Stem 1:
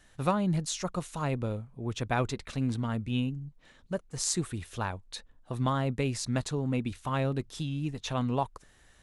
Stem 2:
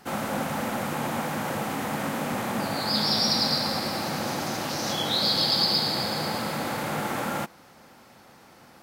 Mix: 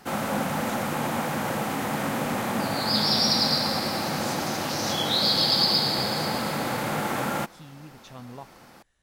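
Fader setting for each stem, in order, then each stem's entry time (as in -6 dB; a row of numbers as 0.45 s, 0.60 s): -12.5 dB, +1.5 dB; 0.00 s, 0.00 s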